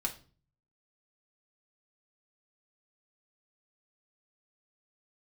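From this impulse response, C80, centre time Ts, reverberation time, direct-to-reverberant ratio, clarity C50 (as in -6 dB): 19.5 dB, 10 ms, 0.40 s, -0.5 dB, 13.5 dB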